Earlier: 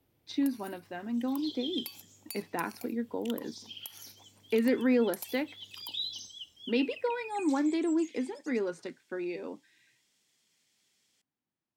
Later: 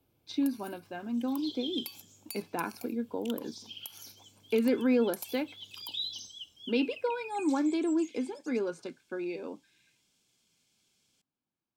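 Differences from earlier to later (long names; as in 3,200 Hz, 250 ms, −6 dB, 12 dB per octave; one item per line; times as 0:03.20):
second sound: add low-shelf EQ 200 Hz +11.5 dB
master: add Butterworth band-reject 1,900 Hz, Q 5.8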